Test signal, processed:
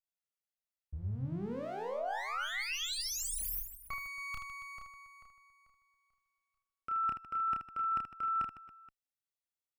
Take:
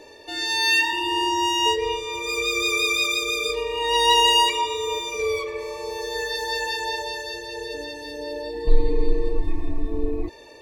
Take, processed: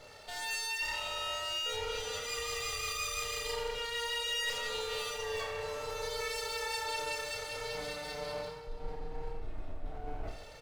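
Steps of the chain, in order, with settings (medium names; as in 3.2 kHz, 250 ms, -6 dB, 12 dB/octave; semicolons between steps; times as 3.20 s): comb filter that takes the minimum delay 1.5 ms; reverse; compression 6:1, threshold -30 dBFS; reverse; reverse bouncing-ball echo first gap 30 ms, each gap 1.6×, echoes 5; trim -6 dB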